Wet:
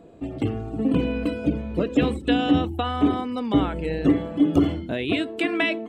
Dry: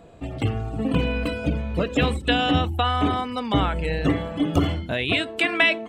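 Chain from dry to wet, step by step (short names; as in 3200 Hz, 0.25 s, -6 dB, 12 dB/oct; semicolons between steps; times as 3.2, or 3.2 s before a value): bell 310 Hz +11.5 dB 1.5 oct; gain -6.5 dB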